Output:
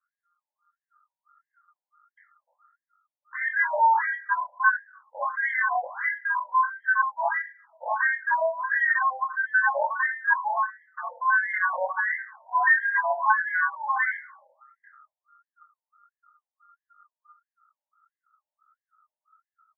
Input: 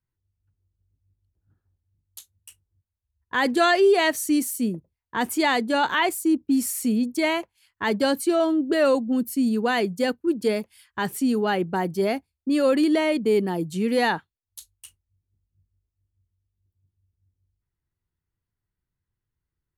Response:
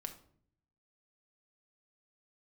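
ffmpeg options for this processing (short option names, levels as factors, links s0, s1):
-filter_complex "[0:a]equalizer=f=230:t=o:w=0.23:g=11.5,bandreject=f=50:t=h:w=6,bandreject=f=100:t=h:w=6,bandreject=f=150:t=h:w=6,bandreject=f=200:t=h:w=6,bandreject=f=250:t=h:w=6,bandreject=f=300:t=h:w=6,asubboost=boost=10.5:cutoff=74,acompressor=threshold=0.112:ratio=6,aeval=exprs='val(0)*sin(2*PI*1300*n/s)':c=same,asplit=2[s0][s1];[s1]adelay=199,lowpass=f=950:p=1,volume=0.0841,asplit=2[s2][s3];[s3]adelay=199,lowpass=f=950:p=1,volume=0.33[s4];[s0][s2][s4]amix=inputs=3:normalize=0,asplit=2[s5][s6];[1:a]atrim=start_sample=2205,adelay=23[s7];[s6][s7]afir=irnorm=-1:irlink=0,volume=1.12[s8];[s5][s8]amix=inputs=2:normalize=0,flanger=delay=19.5:depth=2.8:speed=0.11,asuperstop=centerf=2700:order=12:qfactor=1.9,afftfilt=real='re*between(b*sr/1024,680*pow(2300/680,0.5+0.5*sin(2*PI*1.5*pts/sr))/1.41,680*pow(2300/680,0.5+0.5*sin(2*PI*1.5*pts/sr))*1.41)':imag='im*between(b*sr/1024,680*pow(2300/680,0.5+0.5*sin(2*PI*1.5*pts/sr))/1.41,680*pow(2300/680,0.5+0.5*sin(2*PI*1.5*pts/sr))*1.41)':win_size=1024:overlap=0.75,volume=2.51"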